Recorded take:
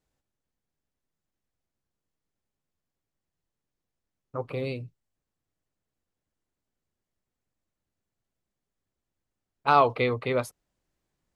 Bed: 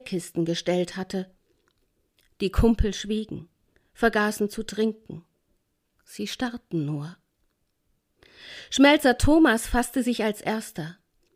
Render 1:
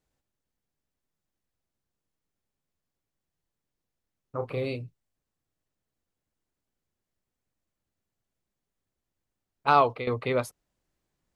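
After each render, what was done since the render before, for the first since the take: 4.36–4.76 s: doubling 33 ms -7 dB; 9.67–10.07 s: fade out equal-power, to -13.5 dB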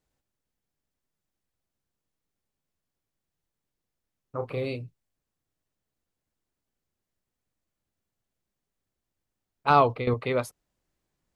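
9.70–10.14 s: bass shelf 260 Hz +9 dB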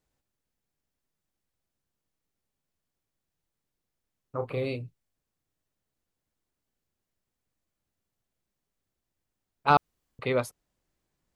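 4.40–4.85 s: peaking EQ 5.6 kHz -8.5 dB 0.25 oct; 9.77–10.19 s: room tone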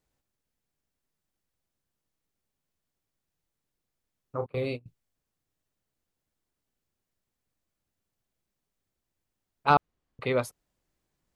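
4.46–4.86 s: gate -34 dBFS, range -24 dB; 9.74–10.21 s: low-pass 2.3 kHz 6 dB/octave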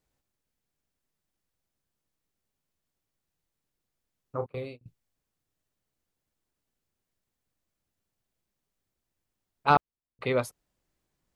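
4.39–4.81 s: fade out, to -24 dB; 9.75–10.21 s: gate -31 dBFS, range -18 dB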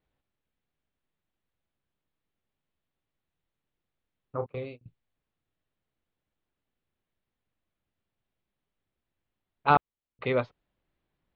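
steep low-pass 3.8 kHz 36 dB/octave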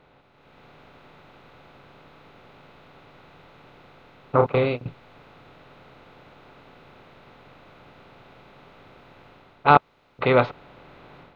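spectral levelling over time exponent 0.6; level rider gain up to 11 dB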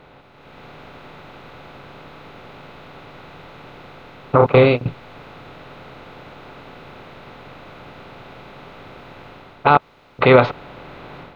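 loudness maximiser +10 dB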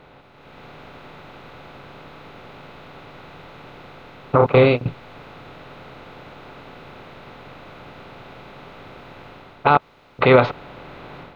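trim -1 dB; peak limiter -3 dBFS, peak gain reduction 1 dB

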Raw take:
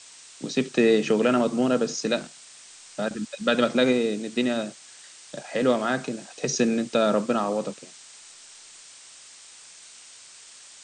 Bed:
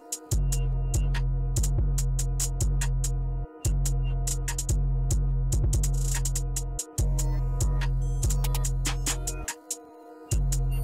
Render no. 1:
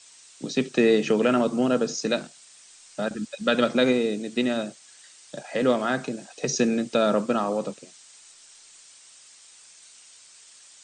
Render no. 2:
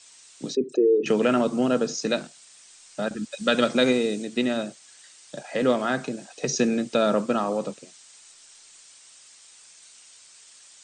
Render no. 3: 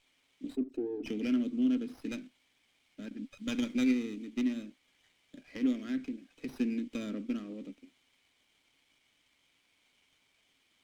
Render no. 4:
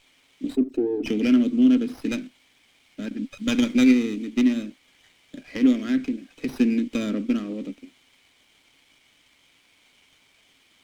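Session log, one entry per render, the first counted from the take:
noise reduction 6 dB, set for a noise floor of -48 dBFS
0.55–1.06 s: resonances exaggerated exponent 3; 3.32–4.25 s: treble shelf 4.9 kHz +7 dB
vowel filter i; sliding maximum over 5 samples
trim +11.5 dB

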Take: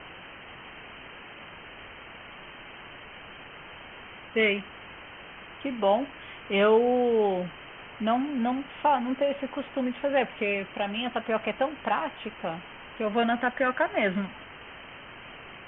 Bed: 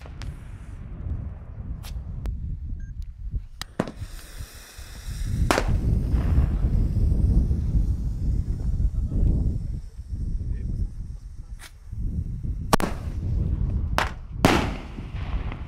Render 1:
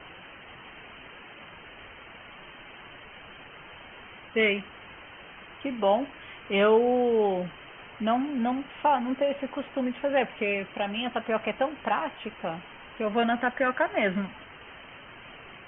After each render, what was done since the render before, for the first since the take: noise reduction 6 dB, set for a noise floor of -46 dBFS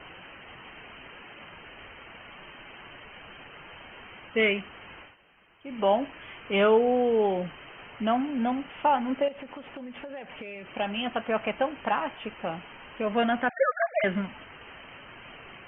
5.00–5.80 s: dip -14.5 dB, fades 0.16 s; 9.28–10.74 s: compression 12:1, threshold -36 dBFS; 13.49–14.04 s: formants replaced by sine waves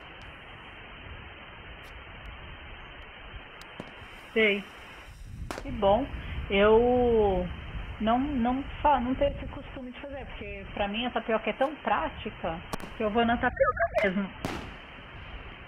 add bed -16 dB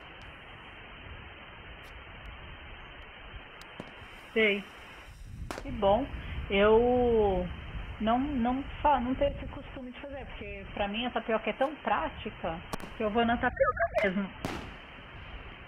trim -2 dB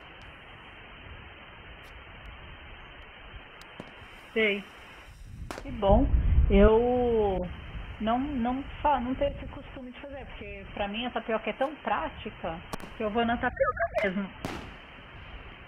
5.89–6.68 s: tilt EQ -4 dB/octave; 7.38–7.97 s: phase dispersion highs, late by 68 ms, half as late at 1.3 kHz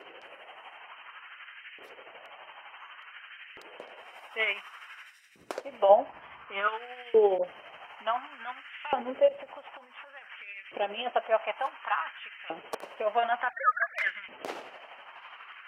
tremolo 12 Hz, depth 48%; LFO high-pass saw up 0.56 Hz 390–2100 Hz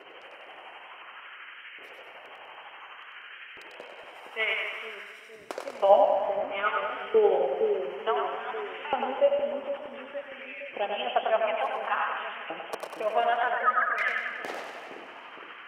on a send: two-band feedback delay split 490 Hz, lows 463 ms, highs 97 ms, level -3.5 dB; on the sum: modulated delay 124 ms, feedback 67%, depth 106 cents, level -11 dB

